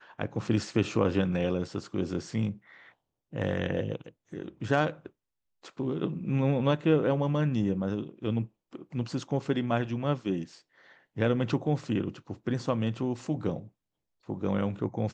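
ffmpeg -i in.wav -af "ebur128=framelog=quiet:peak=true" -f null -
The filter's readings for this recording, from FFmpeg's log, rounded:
Integrated loudness:
  I:         -30.2 LUFS
  Threshold: -40.9 LUFS
Loudness range:
  LRA:         4.6 LU
  Threshold: -51.0 LUFS
  LRA low:   -33.3 LUFS
  LRA high:  -28.8 LUFS
True peak:
  Peak:      -10.8 dBFS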